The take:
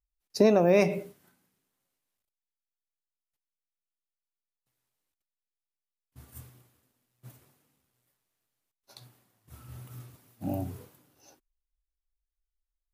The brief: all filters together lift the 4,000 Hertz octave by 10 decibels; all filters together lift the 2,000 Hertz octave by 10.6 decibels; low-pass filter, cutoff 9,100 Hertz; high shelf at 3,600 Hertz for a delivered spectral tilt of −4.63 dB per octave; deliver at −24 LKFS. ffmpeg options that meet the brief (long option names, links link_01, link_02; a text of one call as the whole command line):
ffmpeg -i in.wav -af "lowpass=9100,equalizer=frequency=2000:width_type=o:gain=8.5,highshelf=frequency=3600:gain=8.5,equalizer=frequency=4000:width_type=o:gain=4.5" out.wav